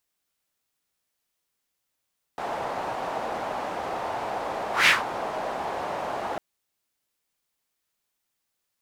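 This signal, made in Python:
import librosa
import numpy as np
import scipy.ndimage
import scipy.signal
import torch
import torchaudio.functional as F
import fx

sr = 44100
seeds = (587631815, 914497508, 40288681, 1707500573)

y = fx.whoosh(sr, seeds[0], length_s=4.0, peak_s=2.49, rise_s=0.16, fall_s=0.18, ends_hz=760.0, peak_hz=2300.0, q=2.3, swell_db=14.0)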